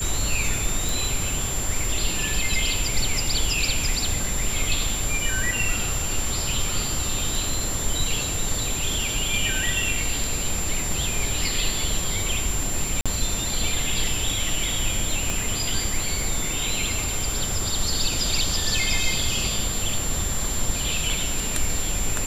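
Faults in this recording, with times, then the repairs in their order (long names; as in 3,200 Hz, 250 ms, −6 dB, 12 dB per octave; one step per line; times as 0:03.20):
surface crackle 25 per second −30 dBFS
whistle 7,300 Hz −28 dBFS
0:00.89: click
0:13.01–0:13.06: drop-out 46 ms
0:15.30: click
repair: click removal
notch filter 7,300 Hz, Q 30
repair the gap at 0:13.01, 46 ms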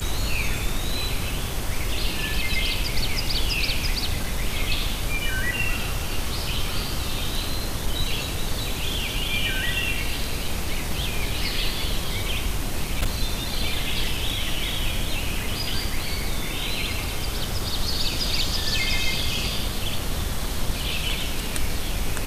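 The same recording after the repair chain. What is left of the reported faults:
0:15.30: click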